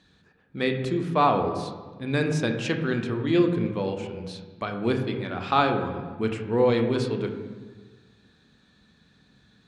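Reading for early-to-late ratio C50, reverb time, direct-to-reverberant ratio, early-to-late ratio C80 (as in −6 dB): 7.0 dB, 1.4 s, 4.0 dB, 9.0 dB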